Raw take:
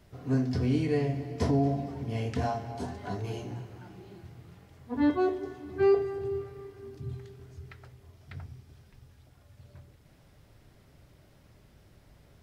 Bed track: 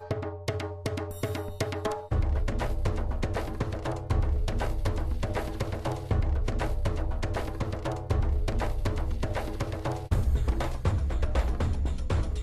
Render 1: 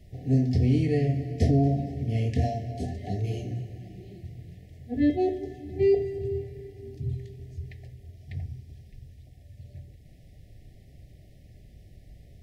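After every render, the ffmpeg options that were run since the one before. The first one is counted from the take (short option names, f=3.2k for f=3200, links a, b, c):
-af "lowshelf=f=140:g=12,afftfilt=real='re*(1-between(b*sr/4096,780,1700))':imag='im*(1-between(b*sr/4096,780,1700))':win_size=4096:overlap=0.75"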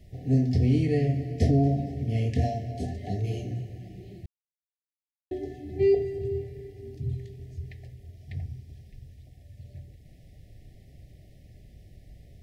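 -filter_complex "[0:a]asplit=3[a][b][c];[a]atrim=end=4.26,asetpts=PTS-STARTPTS,afade=t=out:st=4.256:d=0.004:c=hsin[d];[b]atrim=start=4.26:end=5.31,asetpts=PTS-STARTPTS,volume=0[e];[c]atrim=start=5.31,asetpts=PTS-STARTPTS,afade=t=in:d=0.004:c=hsin[f];[d][e][f]concat=n=3:v=0:a=1"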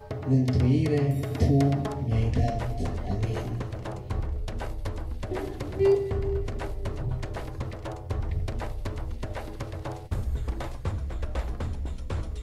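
-filter_complex "[1:a]volume=-4dB[a];[0:a][a]amix=inputs=2:normalize=0"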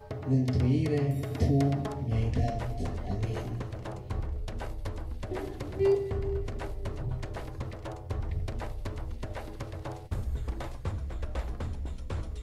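-af "volume=-3.5dB"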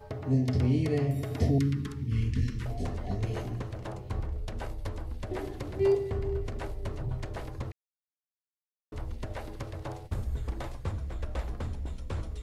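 -filter_complex "[0:a]asettb=1/sr,asplit=3[a][b][c];[a]atrim=end=1.584[d];[b]atrim=start=1.58:end=2.66,asetpts=PTS-STARTPTS,afade=t=in:d=0.004:c=qsin,afade=t=out:st=1.076:d=0.004:c=qsin,asuperstop=centerf=670:order=4:qfactor=0.67[e];[c]atrim=start=2.656[f];[d][e]acrossfade=d=0.004:c1=hsin:c2=qsin[g];[g][f]acrossfade=d=0.004:c1=qsin:c2=hsin,asplit=3[h][i][j];[h]atrim=end=7.72,asetpts=PTS-STARTPTS,afade=t=out:st=7.716:d=0.004:c=hsin[k];[i]atrim=start=7.72:end=8.92,asetpts=PTS-STARTPTS,volume=0[l];[j]atrim=start=8.92,asetpts=PTS-STARTPTS,afade=t=in:d=0.004:c=hsin[m];[k][l][m]concat=n=3:v=0:a=1"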